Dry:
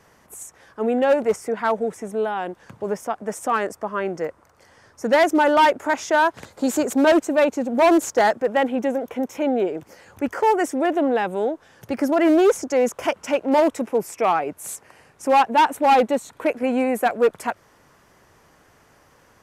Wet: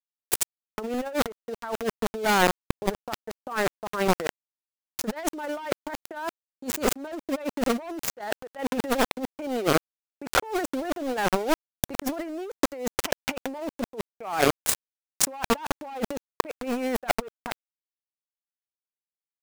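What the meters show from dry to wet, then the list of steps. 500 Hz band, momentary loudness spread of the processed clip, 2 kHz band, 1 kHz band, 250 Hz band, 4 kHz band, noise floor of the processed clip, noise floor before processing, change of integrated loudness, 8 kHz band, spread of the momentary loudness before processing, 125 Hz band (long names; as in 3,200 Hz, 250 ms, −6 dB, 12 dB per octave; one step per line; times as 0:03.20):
−9.5 dB, 11 LU, −5.0 dB, −9.5 dB, −8.0 dB, +0.5 dB, below −85 dBFS, −57 dBFS, −8.0 dB, +3.0 dB, 13 LU, can't be measured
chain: transient designer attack +11 dB, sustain −2 dB
centre clipping without the shift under −25 dBFS
compressor whose output falls as the input rises −30 dBFS, ratio −1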